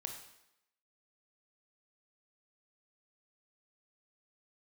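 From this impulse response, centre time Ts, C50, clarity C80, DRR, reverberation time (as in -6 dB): 28 ms, 6.0 dB, 8.5 dB, 3.0 dB, 0.85 s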